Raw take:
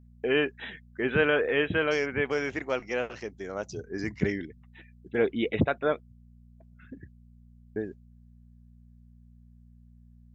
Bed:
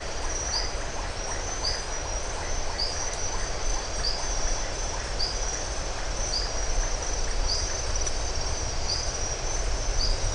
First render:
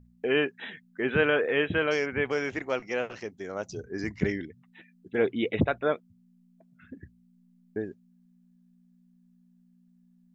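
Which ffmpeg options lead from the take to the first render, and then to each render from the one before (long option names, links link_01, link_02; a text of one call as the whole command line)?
ffmpeg -i in.wav -af "bandreject=frequency=60:width_type=h:width=4,bandreject=frequency=120:width_type=h:width=4" out.wav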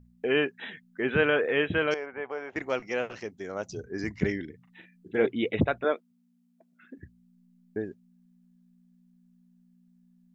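ffmpeg -i in.wav -filter_complex "[0:a]asettb=1/sr,asplit=3[link_01][link_02][link_03];[link_01]atrim=end=1.944[link_04];[link_02]atrim=start=1.94:end=2.56,asetpts=PTS-STARTPTS,afade=type=in:duration=0.004:curve=qsin,afade=type=out:start_time=0.616:duration=0.004:curve=qsin,bandpass=frequency=810:width_type=q:width=1.5[link_05];[link_03]atrim=start=2.556[link_06];[link_04][link_05]acrossfade=duration=0.004:curve1=hsin:curve2=qsin[link_07];[link_07][link_06]acrossfade=duration=0.004:curve1=qsin:curve2=hsin,asettb=1/sr,asplit=3[link_08][link_09][link_10];[link_08]atrim=end=4.444[link_11];[link_09]atrim=start=4.44:end=5.26,asetpts=PTS-STARTPTS,afade=type=in:duration=0.004:curve=qsin,afade=type=out:start_time=0.816:duration=0.004:curve=qsin,asplit=2[link_12][link_13];[link_13]adelay=40,volume=-6dB[link_14];[link_12][link_14]amix=inputs=2:normalize=0,atrim=end_sample=36162[link_15];[link_10]atrim=start=5.256[link_16];[link_11][link_15]acrossfade=duration=0.004:curve1=hsin:curve2=qsin[link_17];[link_17][link_16]acrossfade=duration=0.004:curve1=qsin:curve2=hsin,asettb=1/sr,asplit=3[link_18][link_19][link_20];[link_18]atrim=end=5.844[link_21];[link_19]atrim=start=5.84:end=6.99,asetpts=PTS-STARTPTS,afade=type=in:duration=0.004:curve=qsin,afade=type=out:start_time=1.146:duration=0.004:curve=qsin,highpass=frequency=240:width=0.5412,highpass=frequency=240:width=1.3066[link_22];[link_20]atrim=start=6.986[link_23];[link_21][link_22]acrossfade=duration=0.004:curve1=hsin:curve2=qsin[link_24];[link_24][link_23]acrossfade=duration=0.004:curve1=qsin:curve2=hsin" out.wav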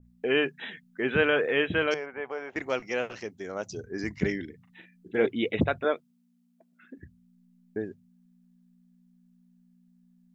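ffmpeg -i in.wav -af "bandreject=frequency=50:width_type=h:width=6,bandreject=frequency=100:width_type=h:width=6,bandreject=frequency=150:width_type=h:width=6,adynamicequalizer=threshold=0.0112:dfrequency=2500:dqfactor=0.7:tfrequency=2500:tqfactor=0.7:attack=5:release=100:ratio=0.375:range=1.5:mode=boostabove:tftype=highshelf" out.wav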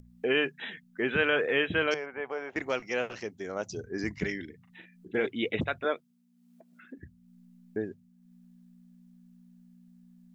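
ffmpeg -i in.wav -filter_complex "[0:a]acrossover=split=1200[link_01][link_02];[link_01]alimiter=limit=-20.5dB:level=0:latency=1:release=469[link_03];[link_03][link_02]amix=inputs=2:normalize=0,acompressor=mode=upward:threshold=-49dB:ratio=2.5" out.wav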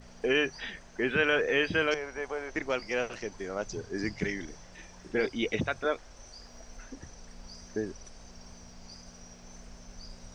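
ffmpeg -i in.wav -i bed.wav -filter_complex "[1:a]volume=-21.5dB[link_01];[0:a][link_01]amix=inputs=2:normalize=0" out.wav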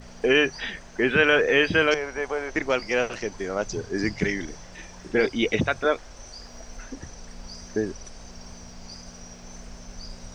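ffmpeg -i in.wav -af "volume=7dB" out.wav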